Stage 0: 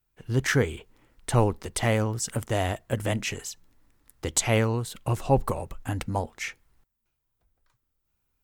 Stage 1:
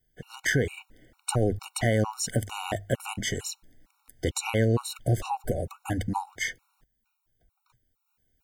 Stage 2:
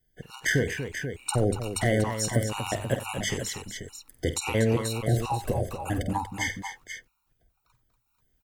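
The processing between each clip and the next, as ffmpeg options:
-af "bandreject=f=50:t=h:w=6,bandreject=f=100:t=h:w=6,alimiter=limit=-19.5dB:level=0:latency=1:release=155,afftfilt=real='re*gt(sin(2*PI*2.2*pts/sr)*(1-2*mod(floor(b*sr/1024/740),2)),0)':imag='im*gt(sin(2*PI*2.2*pts/sr)*(1-2*mod(floor(b*sr/1024/740),2)),0)':win_size=1024:overlap=0.75,volume=6dB"
-af "aecho=1:1:49|91|239|486:0.282|0.126|0.335|0.355"

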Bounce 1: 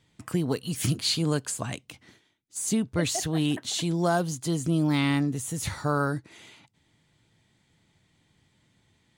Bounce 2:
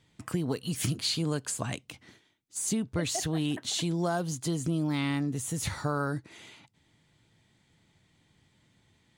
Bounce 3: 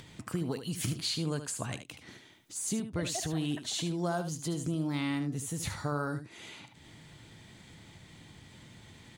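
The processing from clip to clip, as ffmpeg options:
-af "highshelf=f=11k:g=-3,acompressor=threshold=-27dB:ratio=3"
-af "aecho=1:1:75:0.316,acompressor=mode=upward:threshold=-34dB:ratio=2.5,volume=-3.5dB"

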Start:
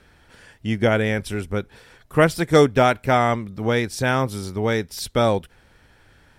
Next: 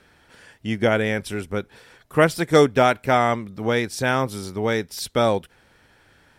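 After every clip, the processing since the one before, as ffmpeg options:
-af "lowshelf=f=84:g=-11.5"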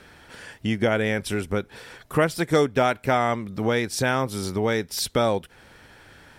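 -af "acompressor=threshold=-32dB:ratio=2,volume=6.5dB"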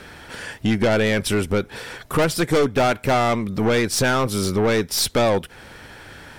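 -af "aeval=exprs='(tanh(14.1*val(0)+0.25)-tanh(0.25))/14.1':c=same,volume=9dB"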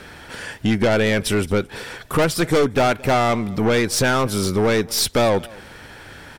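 -af "aecho=1:1:221:0.0708,volume=1dB"

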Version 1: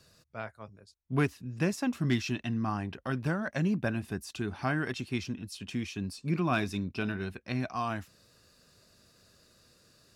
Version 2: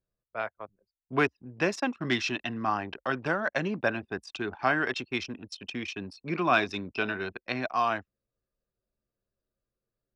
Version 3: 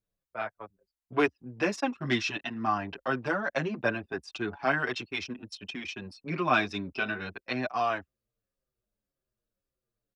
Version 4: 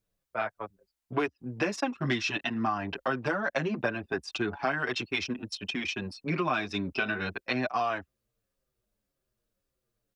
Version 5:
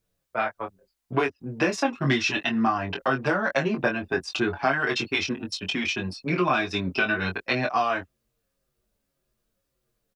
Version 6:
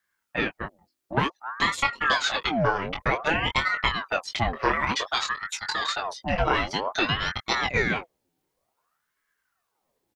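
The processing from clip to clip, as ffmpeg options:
-filter_complex "[0:a]bandreject=f=4.6k:w=30,anlmdn=0.158,acrossover=split=350 6300:gain=0.158 1 0.0708[a][b][c];[a][b][c]amix=inputs=3:normalize=0,volume=7.5dB"
-filter_complex "[0:a]asplit=2[a][b];[b]adelay=6.4,afreqshift=-1.8[c];[a][c]amix=inputs=2:normalize=1,volume=2dB"
-af "acompressor=threshold=-31dB:ratio=6,volume=5.5dB"
-filter_complex "[0:a]asplit=2[a][b];[b]adelay=22,volume=-5.5dB[c];[a][c]amix=inputs=2:normalize=0,volume=4.5dB"
-af "aeval=exprs='val(0)*sin(2*PI*980*n/s+980*0.7/0.54*sin(2*PI*0.54*n/s))':c=same,volume=2.5dB"

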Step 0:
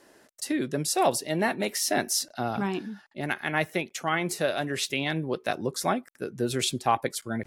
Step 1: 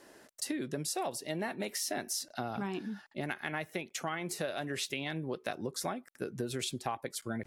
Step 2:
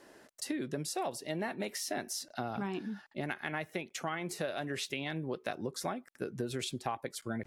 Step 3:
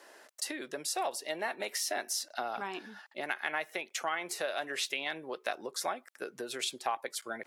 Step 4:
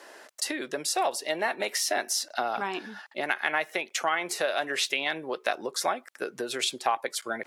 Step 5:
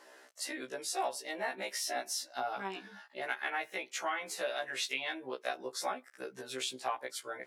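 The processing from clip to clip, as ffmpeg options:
-af "acompressor=threshold=-33dB:ratio=6"
-af "highshelf=f=5.5k:g=-5"
-af "highpass=580,volume=4.5dB"
-af "highshelf=f=11k:g=-5.5,volume=7dB"
-af "afftfilt=real='re*1.73*eq(mod(b,3),0)':imag='im*1.73*eq(mod(b,3),0)':win_size=2048:overlap=0.75,volume=-6dB"

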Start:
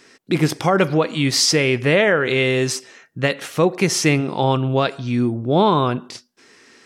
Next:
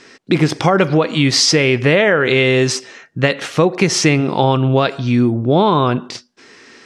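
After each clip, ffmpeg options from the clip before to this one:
-af "lowpass=6.5k,acompressor=threshold=-17dB:ratio=3,volume=7dB"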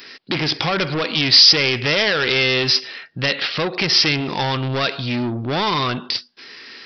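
-af "aresample=11025,asoftclip=type=tanh:threshold=-15dB,aresample=44100,crystalizer=i=8:c=0,volume=-4.5dB"

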